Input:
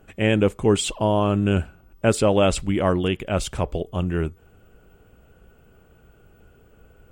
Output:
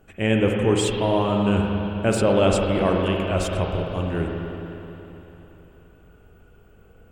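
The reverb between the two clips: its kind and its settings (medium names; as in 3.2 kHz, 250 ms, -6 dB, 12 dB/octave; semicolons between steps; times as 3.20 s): spring tank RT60 3.5 s, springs 41/54 ms, chirp 75 ms, DRR 0 dB; trim -2.5 dB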